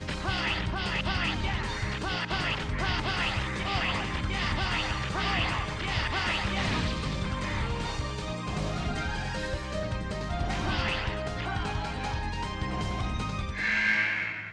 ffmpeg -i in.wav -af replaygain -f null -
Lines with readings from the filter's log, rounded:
track_gain = +10.6 dB
track_peak = 0.149